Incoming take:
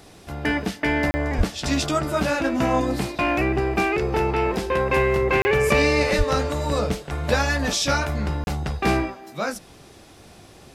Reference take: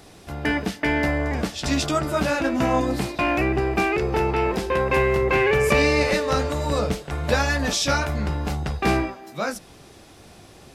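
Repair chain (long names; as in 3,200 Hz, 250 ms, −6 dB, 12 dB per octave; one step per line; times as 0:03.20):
high-pass at the plosives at 0:01.37/0:06.17
repair the gap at 0:01.11/0:05.42/0:08.44, 30 ms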